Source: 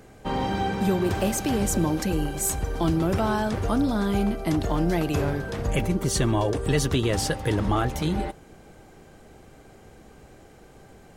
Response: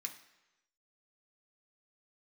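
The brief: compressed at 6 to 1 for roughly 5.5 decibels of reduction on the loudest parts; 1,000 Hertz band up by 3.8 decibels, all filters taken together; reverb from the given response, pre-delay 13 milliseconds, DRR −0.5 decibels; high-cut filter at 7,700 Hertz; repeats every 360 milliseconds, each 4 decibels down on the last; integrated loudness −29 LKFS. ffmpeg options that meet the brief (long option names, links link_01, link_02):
-filter_complex "[0:a]lowpass=7700,equalizer=frequency=1000:width_type=o:gain=5,acompressor=threshold=-24dB:ratio=6,aecho=1:1:360|720|1080|1440|1800|2160|2520|2880|3240:0.631|0.398|0.25|0.158|0.0994|0.0626|0.0394|0.0249|0.0157,asplit=2[link_01][link_02];[1:a]atrim=start_sample=2205,adelay=13[link_03];[link_02][link_03]afir=irnorm=-1:irlink=0,volume=3dB[link_04];[link_01][link_04]amix=inputs=2:normalize=0,volume=-4.5dB"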